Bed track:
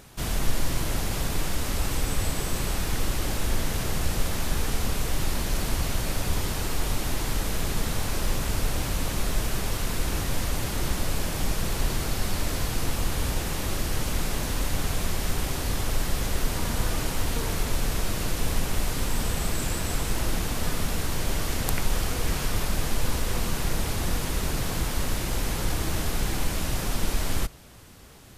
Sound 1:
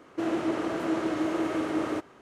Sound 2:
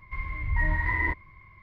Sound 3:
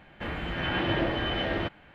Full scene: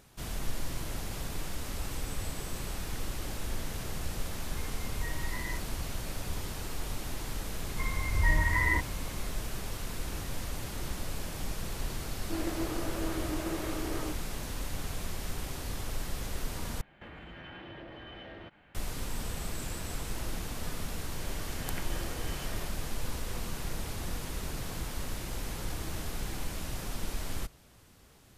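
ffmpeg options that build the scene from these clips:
ffmpeg -i bed.wav -i cue0.wav -i cue1.wav -i cue2.wav -filter_complex "[2:a]asplit=2[link_01][link_02];[3:a]asplit=2[link_03][link_04];[0:a]volume=-9.5dB[link_05];[1:a]flanger=delay=17.5:depth=6.9:speed=1.1[link_06];[link_03]acompressor=threshold=-37dB:ratio=6:attack=3.2:release=140:knee=1:detection=peak[link_07];[link_05]asplit=2[link_08][link_09];[link_08]atrim=end=16.814[link_10];[link_07]atrim=end=1.94,asetpts=PTS-STARTPTS,volume=-6.5dB[link_11];[link_09]atrim=start=18.746[link_12];[link_01]atrim=end=1.62,asetpts=PTS-STARTPTS,volume=-14dB,afade=type=in:duration=0.004:curve=hsin,afade=type=out:start_time=1.616:duration=0.004:curve=hsin,adelay=196245S[link_13];[link_02]atrim=end=1.62,asetpts=PTS-STARTPTS,volume=-1dB,afade=type=in:duration=0.004:curve=hsin,afade=type=out:start_time=1.616:duration=0.004:curve=hsin,adelay=7670[link_14];[link_06]atrim=end=2.21,asetpts=PTS-STARTPTS,volume=-5dB,afade=type=in:duration=0.004:curve=hsin,afade=type=out:start_time=2.206:duration=0.004:curve=hsin,adelay=12120[link_15];[link_04]atrim=end=1.94,asetpts=PTS-STARTPTS,volume=-17dB,afade=type=in:duration=0.004:curve=hsin,afade=type=out:start_time=1.936:duration=0.004:curve=hsin,adelay=21020[link_16];[link_10][link_11]acrossfade=duration=0.004:curve1=hsin:curve2=hsin[link_17];[link_17][link_12]acrossfade=duration=0.004:curve1=hsin:curve2=hsin[link_18];[link_18][link_13][link_14][link_15][link_16]amix=inputs=5:normalize=0" out.wav

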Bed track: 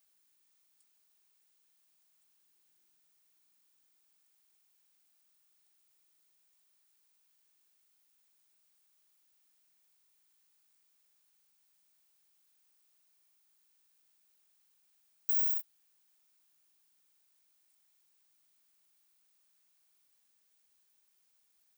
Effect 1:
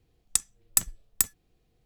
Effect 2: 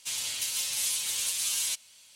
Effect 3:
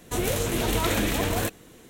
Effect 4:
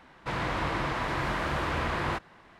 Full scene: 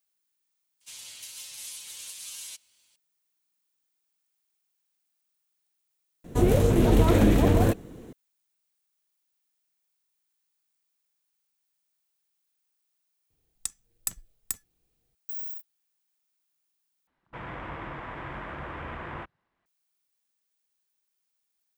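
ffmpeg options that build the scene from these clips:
ffmpeg -i bed.wav -i cue0.wav -i cue1.wav -i cue2.wav -i cue3.wav -filter_complex "[0:a]volume=-6dB[link_01];[3:a]tiltshelf=frequency=970:gain=8.5[link_02];[4:a]afwtdn=0.00891[link_03];[link_01]asplit=2[link_04][link_05];[link_04]atrim=end=17.074[link_06];[link_03]atrim=end=2.59,asetpts=PTS-STARTPTS,volume=-8dB[link_07];[link_05]atrim=start=19.656[link_08];[2:a]atrim=end=2.15,asetpts=PTS-STARTPTS,volume=-11dB,afade=type=in:duration=0.004:curve=hsin,afade=type=out:start_time=2.146:duration=0.004:curve=hsin,adelay=810[link_09];[link_02]atrim=end=1.89,asetpts=PTS-STARTPTS,afade=type=in:duration=0.004:curve=hsin,afade=type=out:start_time=1.886:duration=0.004:curve=hsin,adelay=6240[link_10];[1:a]atrim=end=1.85,asetpts=PTS-STARTPTS,volume=-8.5dB,afade=type=in:duration=0.004:curve=hsin,afade=type=out:start_time=1.846:duration=0.004:curve=hsin,adelay=13300[link_11];[link_06][link_07]acrossfade=duration=0.004:curve1=hsin:curve2=hsin[link_12];[link_12][link_08]acrossfade=duration=0.004:curve1=hsin:curve2=hsin[link_13];[link_13][link_09][link_10][link_11]amix=inputs=4:normalize=0" out.wav

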